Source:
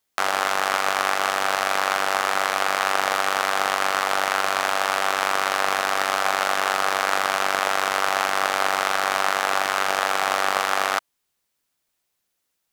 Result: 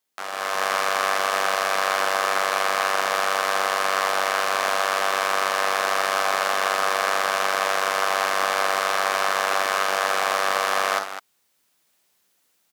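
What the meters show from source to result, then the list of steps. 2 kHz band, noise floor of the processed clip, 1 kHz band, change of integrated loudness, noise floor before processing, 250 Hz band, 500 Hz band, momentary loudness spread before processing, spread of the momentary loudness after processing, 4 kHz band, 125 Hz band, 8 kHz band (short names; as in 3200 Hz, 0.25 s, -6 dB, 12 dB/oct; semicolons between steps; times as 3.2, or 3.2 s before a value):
-0.5 dB, -68 dBFS, -0.5 dB, 0.0 dB, -76 dBFS, -3.5 dB, +1.5 dB, 1 LU, 1 LU, -0.5 dB, n/a, 0.0 dB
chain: HPF 130 Hz 12 dB/oct; limiter -13.5 dBFS, peak gain reduction 11 dB; on a send: tapped delay 50/66/205 ms -8/-17.5/-10.5 dB; on the sum: AGC gain up to 11.5 dB; gain -3.5 dB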